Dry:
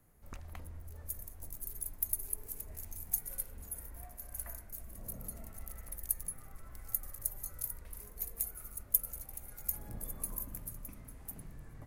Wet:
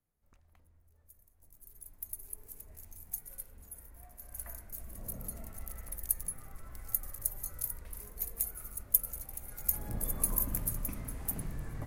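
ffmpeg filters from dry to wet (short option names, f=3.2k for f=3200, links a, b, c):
-af "volume=10dB,afade=t=in:st=1.34:d=1.07:silence=0.223872,afade=t=in:st=3.98:d=0.9:silence=0.398107,afade=t=in:st=9.41:d=1.14:silence=0.421697"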